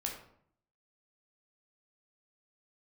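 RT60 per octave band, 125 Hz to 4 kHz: 0.85 s, 0.80 s, 0.65 s, 0.60 s, 0.50 s, 0.40 s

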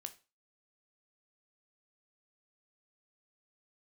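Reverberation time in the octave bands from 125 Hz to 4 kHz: 0.35 s, 0.35 s, 0.30 s, 0.30 s, 0.30 s, 0.30 s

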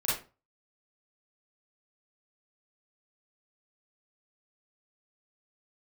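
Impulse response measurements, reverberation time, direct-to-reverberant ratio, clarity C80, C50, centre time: 0.35 s, -9.0 dB, 10.5 dB, 1.5 dB, 48 ms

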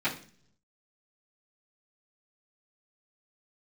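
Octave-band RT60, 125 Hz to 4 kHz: 1.0 s, 0.80 s, 0.55 s, 0.40 s, 0.45 s, 0.50 s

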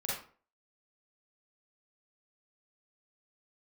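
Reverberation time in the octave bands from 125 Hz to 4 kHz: 0.45 s, 0.45 s, 0.45 s, 0.40 s, 0.35 s, 0.30 s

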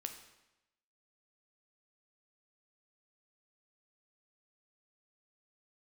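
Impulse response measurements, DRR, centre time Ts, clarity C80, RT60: 5.5 dB, 18 ms, 11.0 dB, 0.95 s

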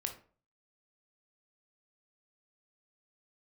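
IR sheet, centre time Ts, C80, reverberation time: 13 ms, 15.5 dB, 0.45 s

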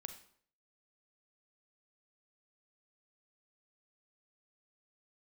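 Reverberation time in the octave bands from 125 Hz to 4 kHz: 0.60 s, 0.60 s, 0.60 s, 0.55 s, 0.50 s, 0.50 s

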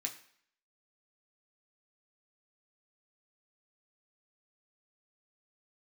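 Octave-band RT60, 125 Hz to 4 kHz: 0.50 s, 0.55 s, 0.55 s, 0.60 s, 0.65 s, 0.60 s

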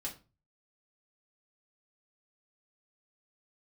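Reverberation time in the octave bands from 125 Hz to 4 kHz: 0.60 s, 0.40 s, 0.35 s, 0.30 s, 0.25 s, 0.25 s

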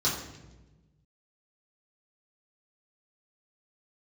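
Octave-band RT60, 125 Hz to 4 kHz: 1.9 s, 1.6 s, 1.3 s, 0.95 s, 0.90 s, 0.80 s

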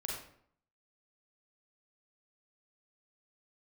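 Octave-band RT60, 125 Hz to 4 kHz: 0.75 s, 0.70 s, 0.65 s, 0.65 s, 0.55 s, 0.45 s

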